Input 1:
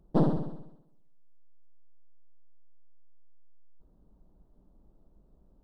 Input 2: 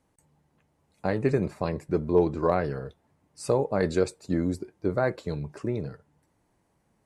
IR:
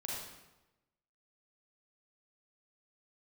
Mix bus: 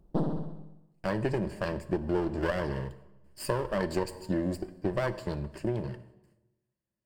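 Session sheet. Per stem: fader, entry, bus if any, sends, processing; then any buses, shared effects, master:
+1.0 dB, 0.00 s, send -19 dB, auto duck -16 dB, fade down 1.30 s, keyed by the second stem
-1.0 dB, 0.00 s, send -14.5 dB, minimum comb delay 0.44 ms; gate with hold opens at -57 dBFS; ripple EQ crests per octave 1.3, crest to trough 8 dB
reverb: on, RT60 1.0 s, pre-delay 35 ms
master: compressor 6:1, threshold -25 dBFS, peak gain reduction 8 dB

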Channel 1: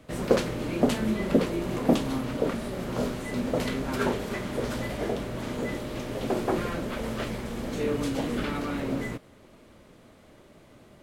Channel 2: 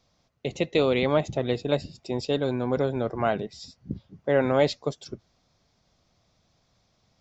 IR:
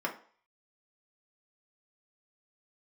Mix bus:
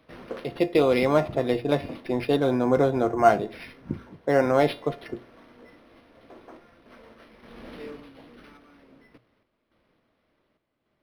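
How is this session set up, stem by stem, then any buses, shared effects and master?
7.68 s -4.5 dB -> 8.11 s -11.5 dB, 0.00 s, send -19.5 dB, tilt shelf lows -4 dB, about 1400 Hz; random-step tremolo 3.5 Hz, depth 75%; auto duck -15 dB, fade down 0.60 s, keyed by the second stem
+2.0 dB, 0.00 s, send -14 dB, AGC gain up to 13 dB; resonator 350 Hz, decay 0.27 s, harmonics all, mix 70%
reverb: on, RT60 0.45 s, pre-delay 3 ms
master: notches 60/120 Hz; decimation joined by straight lines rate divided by 6×

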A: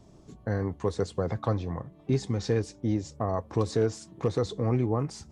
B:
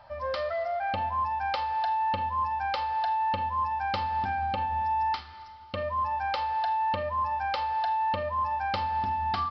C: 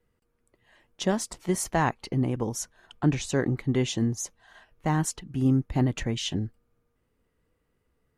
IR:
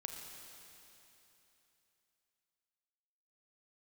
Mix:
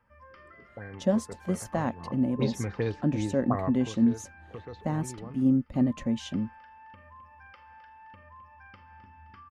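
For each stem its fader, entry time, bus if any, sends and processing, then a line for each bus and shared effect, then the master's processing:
1.93 s -15 dB -> 2.22 s -3.5 dB -> 3.64 s -3.5 dB -> 3.91 s -16 dB, 0.30 s, no send, no echo send, envelope low-pass 350–4000 Hz up, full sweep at -21.5 dBFS
-12.0 dB, 0.00 s, no send, echo send -12.5 dB, fixed phaser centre 1700 Hz, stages 4; compressor 4:1, threshold -37 dBFS, peak gain reduction 7.5 dB
-10.5 dB, 0.00 s, no send, no echo send, small resonant body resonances 230/550 Hz, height 16 dB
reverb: off
echo: feedback echo 0.261 s, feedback 43%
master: dry

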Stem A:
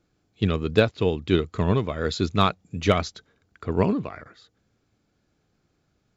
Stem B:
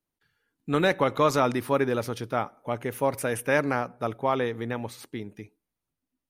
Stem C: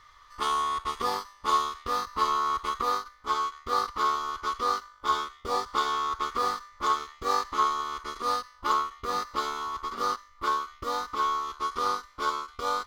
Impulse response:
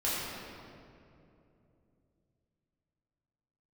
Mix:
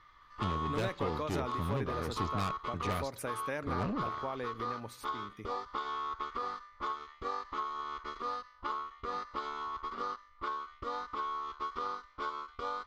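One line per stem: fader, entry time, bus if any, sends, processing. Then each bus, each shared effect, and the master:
-7.0 dB, 0.00 s, no bus, no send, tone controls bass +3 dB, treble -3 dB; tube stage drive 24 dB, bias 0.8
-7.0 dB, 0.00 s, bus A, no send, dry
-4.5 dB, 0.00 s, bus A, no send, LPF 3400 Hz 12 dB/oct
bus A: 0.0 dB, compressor 5:1, threshold -34 dBFS, peak gain reduction 10.5 dB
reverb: off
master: dry

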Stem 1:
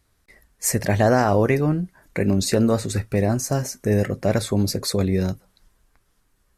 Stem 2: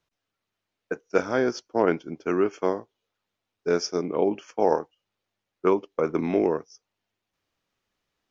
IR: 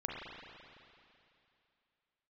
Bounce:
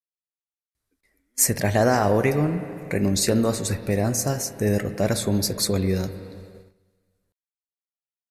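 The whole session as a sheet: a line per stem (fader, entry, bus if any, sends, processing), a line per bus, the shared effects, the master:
-4.5 dB, 0.75 s, send -8.5 dB, dry
-15.5 dB, 0.00 s, no send, limiter -17 dBFS, peak gain reduction 11 dB; vowel sequencer 1.1 Hz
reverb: on, RT60 2.7 s, pre-delay 34 ms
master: gate -44 dBFS, range -15 dB; high shelf 4500 Hz +7.5 dB

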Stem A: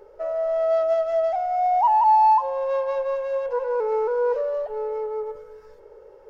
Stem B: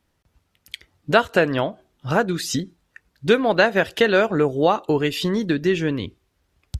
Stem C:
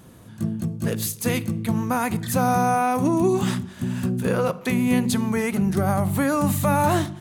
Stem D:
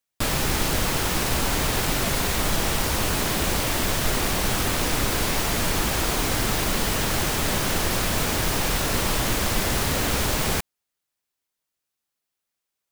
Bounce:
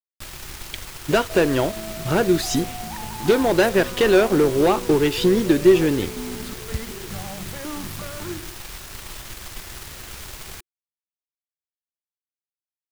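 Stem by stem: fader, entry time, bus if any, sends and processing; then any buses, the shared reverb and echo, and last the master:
-2.5 dB, 1.10 s, bus A, no send, compressor, threshold -31 dBFS, peak gain reduction 15.5 dB
+2.5 dB, 0.00 s, no bus, no send, soft clip -16 dBFS, distortion -10 dB
-7.0 dB, 1.35 s, bus A, no send, step phaser 5.4 Hz 380–2700 Hz
-8.0 dB, 0.00 s, no bus, no send, bell 340 Hz -13.5 dB 2.2 oct
bus A: 0.0 dB, limiter -25 dBFS, peak gain reduction 6.5 dB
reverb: off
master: crossover distortion -39.5 dBFS; bell 360 Hz +10 dB 0.38 oct

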